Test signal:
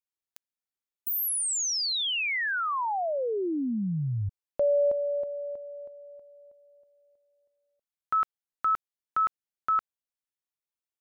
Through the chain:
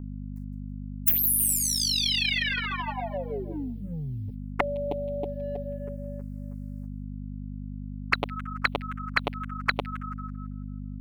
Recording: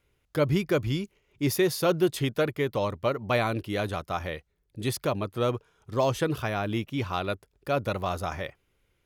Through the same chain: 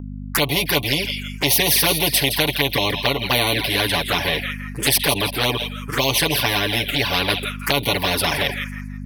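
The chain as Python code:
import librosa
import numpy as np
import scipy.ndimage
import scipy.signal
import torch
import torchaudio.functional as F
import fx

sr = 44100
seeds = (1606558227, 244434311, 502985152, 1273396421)

y = scipy.signal.sosfilt(scipy.signal.butter(2, 41.0, 'highpass', fs=sr, output='sos'), x)
y = fx.gate_hold(y, sr, open_db=-51.0, close_db=-57.0, hold_ms=13.0, range_db=-35, attack_ms=0.68, release_ms=48.0)
y = y + 0.97 * np.pad(y, (int(7.0 * sr / 1000.0), 0))[:len(y)]
y = fx.echo_wet_highpass(y, sr, ms=165, feedback_pct=32, hz=2100.0, wet_db=-11.5)
y = fx.dynamic_eq(y, sr, hz=600.0, q=1.0, threshold_db=-36.0, ratio=2.5, max_db=4)
y = fx.env_flanger(y, sr, rest_ms=10.1, full_db=-17.5)
y = fx.add_hum(y, sr, base_hz=50, snr_db=22)
y = fx.env_phaser(y, sr, low_hz=490.0, high_hz=1300.0, full_db=-27.0)
y = fx.spectral_comp(y, sr, ratio=4.0)
y = F.gain(torch.from_numpy(y), 7.5).numpy()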